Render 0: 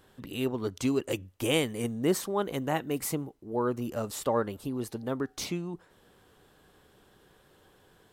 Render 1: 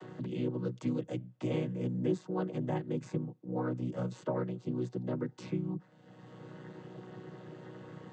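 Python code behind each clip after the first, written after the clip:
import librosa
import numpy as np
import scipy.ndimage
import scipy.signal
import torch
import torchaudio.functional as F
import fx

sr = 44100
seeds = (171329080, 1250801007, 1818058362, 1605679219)

y = fx.chord_vocoder(x, sr, chord='major triad', root=47)
y = fx.band_squash(y, sr, depth_pct=70)
y = F.gain(torch.from_numpy(y), -2.5).numpy()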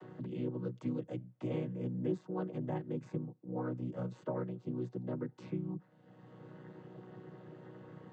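y = fx.high_shelf(x, sr, hz=3500.0, db=-11.5)
y = F.gain(torch.from_numpy(y), -3.5).numpy()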